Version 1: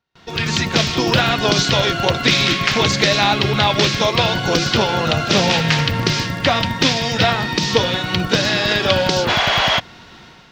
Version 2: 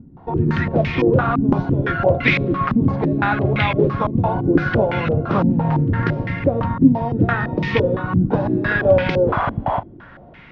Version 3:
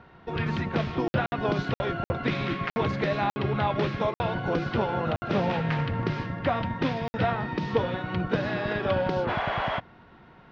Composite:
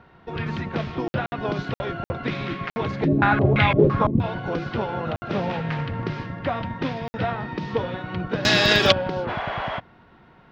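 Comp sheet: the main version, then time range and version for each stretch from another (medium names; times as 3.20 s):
3
3.04–4.21 s: from 2, crossfade 0.10 s
8.45–8.92 s: from 1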